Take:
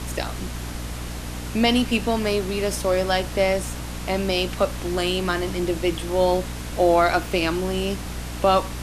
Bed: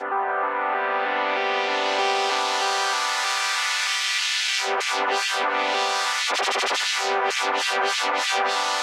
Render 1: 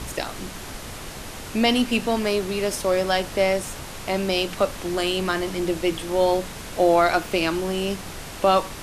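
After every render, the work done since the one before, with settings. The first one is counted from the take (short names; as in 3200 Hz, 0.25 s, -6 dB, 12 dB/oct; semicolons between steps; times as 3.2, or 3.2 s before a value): de-hum 60 Hz, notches 5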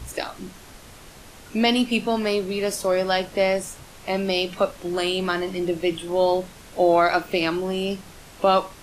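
noise print and reduce 9 dB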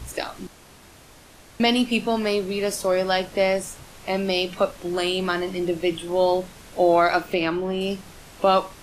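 0.47–1.6 room tone; 7.34–7.81 tone controls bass 0 dB, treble -11 dB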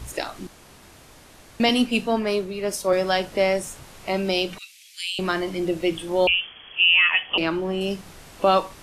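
1.69–2.93 three-band expander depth 100%; 4.58–5.19 elliptic high-pass 2300 Hz, stop band 70 dB; 6.27–7.38 inverted band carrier 3300 Hz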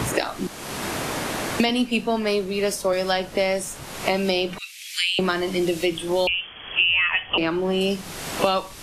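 three-band squash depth 100%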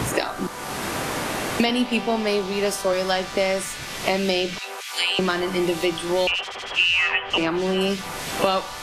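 add bed -11.5 dB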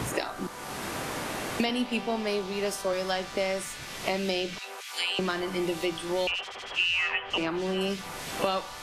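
gain -7 dB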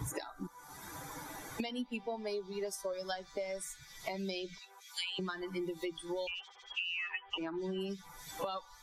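per-bin expansion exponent 2; compressor 6:1, threshold -35 dBFS, peak gain reduction 10.5 dB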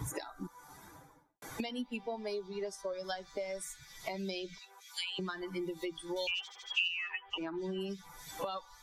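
0.45–1.42 studio fade out; 2.48–3.04 air absorption 59 m; 6.16–6.88 high shelf 2600 Hz +11.5 dB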